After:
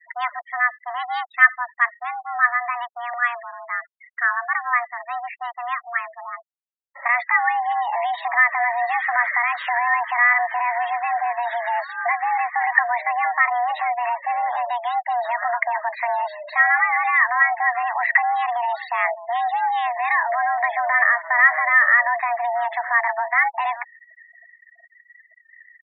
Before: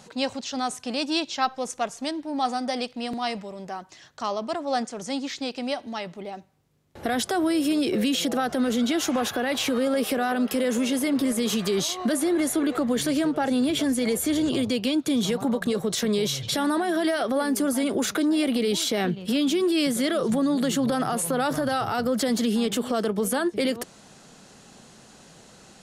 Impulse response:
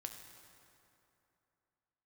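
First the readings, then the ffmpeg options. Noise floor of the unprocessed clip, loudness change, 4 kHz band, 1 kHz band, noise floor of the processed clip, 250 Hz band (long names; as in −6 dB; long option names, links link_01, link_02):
−51 dBFS, +5.0 dB, −13.5 dB, +11.0 dB, −60 dBFS, below −40 dB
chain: -af "afreqshift=480,lowpass=frequency=1900:width_type=q:width=11,afftfilt=real='re*gte(hypot(re,im),0.0355)':imag='im*gte(hypot(re,im),0.0355)':win_size=1024:overlap=0.75,volume=-1dB"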